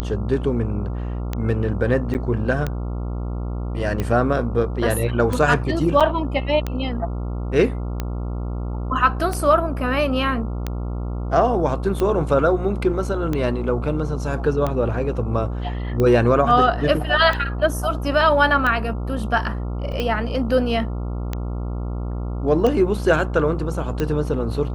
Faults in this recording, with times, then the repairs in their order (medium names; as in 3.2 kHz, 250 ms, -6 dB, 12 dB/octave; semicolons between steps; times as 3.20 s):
buzz 60 Hz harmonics 23 -26 dBFS
tick 45 rpm -11 dBFS
2.14–2.15 s: dropout 9.2 ms
6.00–6.01 s: dropout 6.5 ms
19.92 s: dropout 3 ms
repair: de-click; de-hum 60 Hz, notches 23; interpolate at 2.14 s, 9.2 ms; interpolate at 6.00 s, 6.5 ms; interpolate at 19.92 s, 3 ms